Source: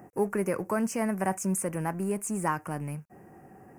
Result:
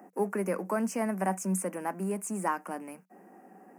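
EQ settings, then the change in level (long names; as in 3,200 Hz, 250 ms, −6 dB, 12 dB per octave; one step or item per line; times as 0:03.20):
Chebyshev high-pass with heavy ripple 180 Hz, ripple 3 dB
0.0 dB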